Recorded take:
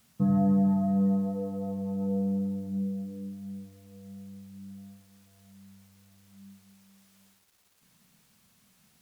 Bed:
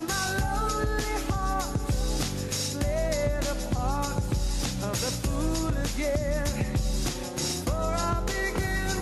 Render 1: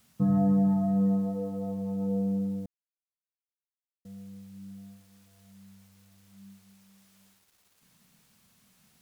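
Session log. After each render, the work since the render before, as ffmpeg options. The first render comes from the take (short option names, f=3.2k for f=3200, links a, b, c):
-filter_complex "[0:a]asplit=3[a][b][c];[a]atrim=end=2.66,asetpts=PTS-STARTPTS,afade=t=out:st=2.656:d=0.004:c=hsin[d];[b]atrim=start=2.66:end=4.05,asetpts=PTS-STARTPTS,volume=0[e];[c]atrim=start=4.05,asetpts=PTS-STARTPTS,afade=t=in:d=0.004:c=hsin[f];[d][e][f]concat=n=3:v=0:a=1"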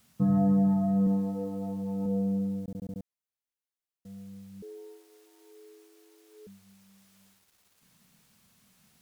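-filter_complex "[0:a]asettb=1/sr,asplit=3[a][b][c];[a]atrim=end=1.054[d];[b]atrim=start=1.05:end=2.06,asetpts=PTS-STARTPTS,afade=t=in:d=0.004:c=qsin,afade=t=out:st=1.006:d=0.004:c=qsin,asplit=2[e][f];[f]adelay=17,volume=-4dB[g];[e][g]amix=inputs=2:normalize=0,atrim=end_sample=44541[h];[c]atrim=start=2.056[i];[d][h]acrossfade=d=0.004:c1=hsin:c2=qsin[j];[j][i]acrossfade=d=0.004:c1=qsin:c2=hsin,asettb=1/sr,asplit=3[k][l][m];[k]atrim=end=4.624[n];[l]atrim=start=4.62:end=6.47,asetpts=PTS-STARTPTS,afade=t=in:d=0.004:c=qsin,afade=t=out:st=1.846:d=0.004:c=qsin,afreqshift=230[o];[m]atrim=start=6.466[p];[n][o]acrossfade=d=0.004:c1=hsin:c2=qsin[q];[q][p]acrossfade=d=0.004:c1=qsin:c2=hsin,asplit=7[r][s][t][u][v][w][x];[r]atrim=end=2.682[y];[s]atrim=start=2.608:end=2.682[z];[t]atrim=start=2.608:end=2.682[aa];[u]atrim=start=2.608:end=2.682[ab];[v]atrim=start=2.608:end=2.682[ac];[w]atrim=start=2.608:end=2.682[ad];[x]atrim=start=3.028[ae];[y][z]acrossfade=d=0.004:c1=hsin:c2=hsin[af];[af][aa]acrossfade=d=0.004:c1=hsin:c2=hsin[ag];[ag][ab]acrossfade=d=0.004:c1=hsin:c2=hsin[ah];[ah][ac]acrossfade=d=0.004:c1=hsin:c2=hsin[ai];[ai][ad]acrossfade=d=0.004:c1=hsin:c2=hsin[aj];[aj][ae]acrossfade=d=0.004:c1=hsin:c2=hsin"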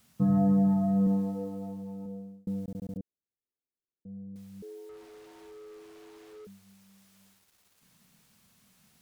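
-filter_complex "[0:a]asettb=1/sr,asplit=3[a][b][c];[a]atrim=end=2.974[d];[b]atrim=start=2.97:end=4.36,asetpts=PTS-STARTPTS,afade=t=in:d=0.004:c=qsin,afade=t=out:st=1.386:d=0.004:c=qsin,lowpass=f=380:t=q:w=1.8[e];[c]atrim=start=4.356[f];[d][e]acrossfade=d=0.004:c1=hsin:c2=qsin[g];[g][f]acrossfade=d=0.004:c1=qsin:c2=hsin,asettb=1/sr,asplit=3[h][i][j];[h]atrim=end=4.894[k];[i]atrim=start=4.89:end=6.45,asetpts=PTS-STARTPTS,afade=t=in:d=0.004:c=qsin,afade=t=out:st=1.556:d=0.004:c=qsin,asplit=2[l][m];[m]highpass=f=720:p=1,volume=28dB,asoftclip=type=tanh:threshold=-41dB[n];[l][n]amix=inputs=2:normalize=0,lowpass=f=1.4k:p=1,volume=-6dB[o];[j]atrim=start=6.446[p];[k][o]acrossfade=d=0.004:c1=hsin:c2=qsin[q];[q][p]acrossfade=d=0.004:c1=qsin:c2=hsin,asplit=2[r][s];[r]atrim=end=2.47,asetpts=PTS-STARTPTS,afade=t=out:st=1.2:d=1.27[t];[s]atrim=start=2.47,asetpts=PTS-STARTPTS,afade=t=in:d=0.004:c=hsin[u];[t][u]concat=n=2:v=0:a=1"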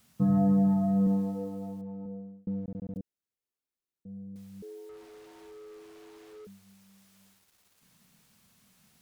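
-filter_complex "[0:a]asettb=1/sr,asplit=3[a][b][c];[a]atrim=end=1.814[d];[b]atrim=start=1.81:end=2.96,asetpts=PTS-STARTPTS,afade=t=in:d=0.004:c=qsin,afade=t=out:st=1.146:d=0.004:c=qsin,lowpass=1.7k[e];[c]atrim=start=2.956[f];[d][e]acrossfade=d=0.004:c1=hsin:c2=qsin[g];[g][f]acrossfade=d=0.004:c1=qsin:c2=hsin"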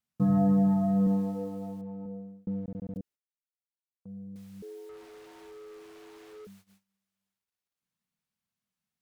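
-af "agate=range=-27dB:threshold=-56dB:ratio=16:detection=peak,equalizer=f=1.7k:w=0.45:g=3"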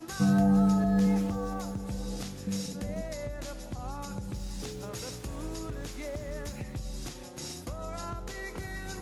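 -filter_complex "[1:a]volume=-10.5dB[a];[0:a][a]amix=inputs=2:normalize=0"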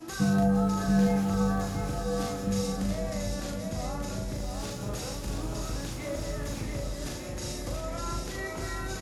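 -filter_complex "[0:a]asplit=2[a][b];[b]adelay=39,volume=-3dB[c];[a][c]amix=inputs=2:normalize=0,aecho=1:1:680|1190|1572|1859|2075:0.631|0.398|0.251|0.158|0.1"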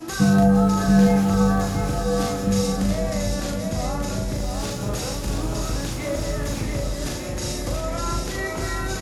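-af "volume=8dB"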